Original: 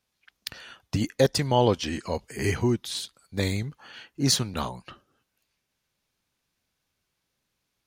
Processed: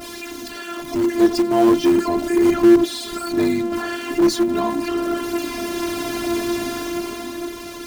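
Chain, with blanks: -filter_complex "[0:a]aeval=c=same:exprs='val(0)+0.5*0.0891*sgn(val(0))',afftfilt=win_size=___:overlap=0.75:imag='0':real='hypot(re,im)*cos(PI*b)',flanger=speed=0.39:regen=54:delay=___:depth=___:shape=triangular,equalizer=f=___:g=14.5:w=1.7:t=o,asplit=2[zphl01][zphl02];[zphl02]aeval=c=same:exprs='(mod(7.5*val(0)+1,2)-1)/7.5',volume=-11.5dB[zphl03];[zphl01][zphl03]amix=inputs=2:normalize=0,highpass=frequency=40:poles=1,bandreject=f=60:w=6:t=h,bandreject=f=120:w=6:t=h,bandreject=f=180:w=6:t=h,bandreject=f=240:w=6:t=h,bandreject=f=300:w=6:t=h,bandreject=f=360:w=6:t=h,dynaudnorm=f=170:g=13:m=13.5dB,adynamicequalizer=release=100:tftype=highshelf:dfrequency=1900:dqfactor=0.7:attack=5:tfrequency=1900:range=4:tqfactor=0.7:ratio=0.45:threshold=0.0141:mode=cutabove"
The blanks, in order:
512, 1.4, 7.9, 240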